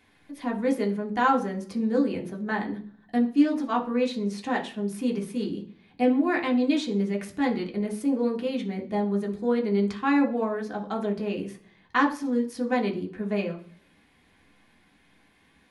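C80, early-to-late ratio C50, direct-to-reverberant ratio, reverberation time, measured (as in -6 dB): 17.5 dB, 12.0 dB, 0.0 dB, 0.45 s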